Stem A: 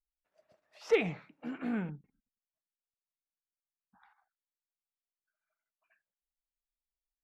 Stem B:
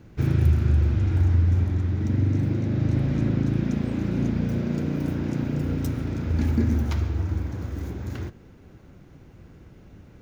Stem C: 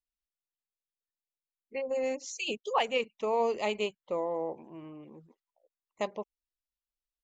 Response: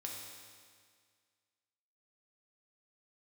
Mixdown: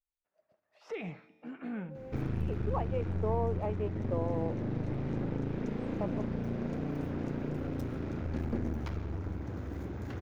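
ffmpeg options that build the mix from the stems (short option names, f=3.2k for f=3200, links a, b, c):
-filter_complex "[0:a]alimiter=level_in=3dB:limit=-24dB:level=0:latency=1:release=16,volume=-3dB,adynamicequalizer=threshold=0.00316:dfrequency=1800:dqfactor=0.7:tfrequency=1800:tqfactor=0.7:attack=5:release=100:ratio=0.375:range=2:mode=boostabove:tftype=highshelf,volume=-4.5dB,asplit=3[a][b][c];[b]volume=-13.5dB[d];[1:a]aeval=exprs='clip(val(0),-1,0.0299)':c=same,acompressor=threshold=-38dB:ratio=1.5,lowshelf=f=180:g=-7.5,adelay=1950,volume=2dB[e];[2:a]lowpass=1.2k,aeval=exprs='sgn(val(0))*max(abs(val(0))-0.00224,0)':c=same,alimiter=limit=-24dB:level=0:latency=1:release=456,volume=-1dB[f];[c]apad=whole_len=318982[g];[f][g]sidechaincompress=threshold=-59dB:ratio=4:attack=16:release=514[h];[3:a]atrim=start_sample=2205[i];[d][i]afir=irnorm=-1:irlink=0[j];[a][e][h][j]amix=inputs=4:normalize=0,highshelf=f=2.9k:g=-11.5"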